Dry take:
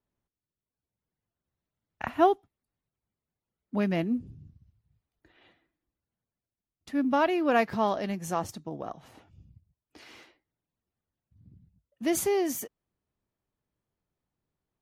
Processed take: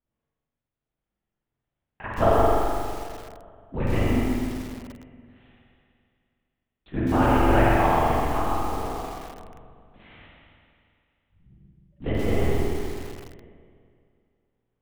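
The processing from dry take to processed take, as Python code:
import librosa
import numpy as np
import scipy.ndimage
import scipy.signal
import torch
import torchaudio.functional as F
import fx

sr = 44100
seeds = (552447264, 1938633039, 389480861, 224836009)

y = fx.lpc_vocoder(x, sr, seeds[0], excitation='whisper', order=8)
y = fx.rev_spring(y, sr, rt60_s=2.3, pass_ms=(42, 51), chirp_ms=70, drr_db=-5.5)
y = fx.echo_crushed(y, sr, ms=129, feedback_pct=35, bits=6, wet_db=-4)
y = F.gain(torch.from_numpy(y), -2.0).numpy()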